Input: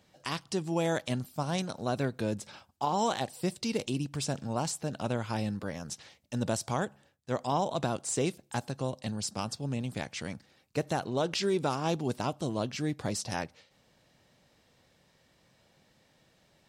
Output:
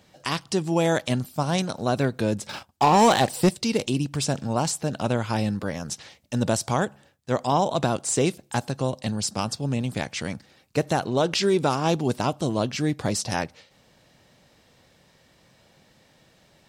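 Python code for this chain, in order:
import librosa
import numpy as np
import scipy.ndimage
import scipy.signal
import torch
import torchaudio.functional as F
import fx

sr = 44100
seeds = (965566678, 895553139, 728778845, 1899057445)

y = fx.leveller(x, sr, passes=2, at=(2.49, 3.49))
y = y * 10.0 ** (7.5 / 20.0)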